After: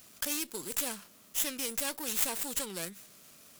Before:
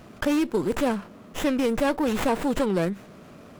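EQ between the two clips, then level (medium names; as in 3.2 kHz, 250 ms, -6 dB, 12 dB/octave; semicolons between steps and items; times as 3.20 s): pre-emphasis filter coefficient 0.9; treble shelf 3.1 kHz +9.5 dB; 0.0 dB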